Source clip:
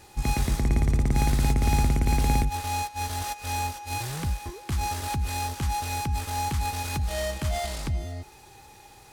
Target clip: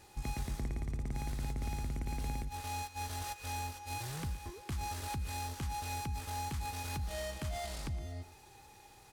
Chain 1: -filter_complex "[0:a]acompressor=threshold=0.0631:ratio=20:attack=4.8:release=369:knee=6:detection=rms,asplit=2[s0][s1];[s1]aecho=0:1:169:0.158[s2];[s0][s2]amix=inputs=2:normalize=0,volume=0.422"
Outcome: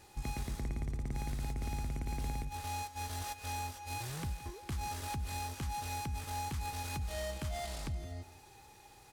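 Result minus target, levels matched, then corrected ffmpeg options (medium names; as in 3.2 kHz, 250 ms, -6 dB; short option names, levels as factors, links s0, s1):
echo 54 ms late
-filter_complex "[0:a]acompressor=threshold=0.0631:ratio=20:attack=4.8:release=369:knee=6:detection=rms,asplit=2[s0][s1];[s1]aecho=0:1:115:0.158[s2];[s0][s2]amix=inputs=2:normalize=0,volume=0.422"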